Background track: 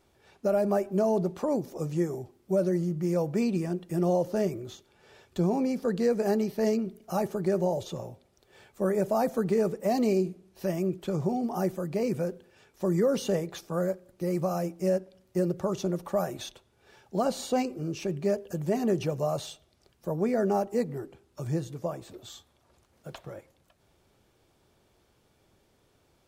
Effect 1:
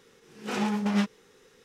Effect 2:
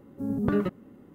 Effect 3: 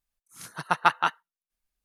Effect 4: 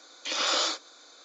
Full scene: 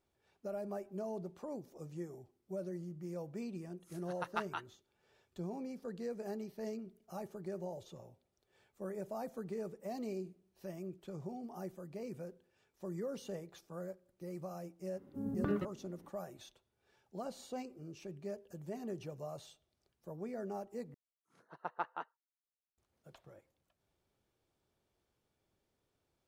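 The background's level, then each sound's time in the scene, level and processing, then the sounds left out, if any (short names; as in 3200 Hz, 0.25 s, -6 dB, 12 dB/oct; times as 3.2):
background track -16 dB
3.51 add 3 -17.5 dB
14.96 add 2 -9.5 dB
20.94 replace with 3 -10 dB + band-pass 470 Hz, Q 1.3
not used: 1, 4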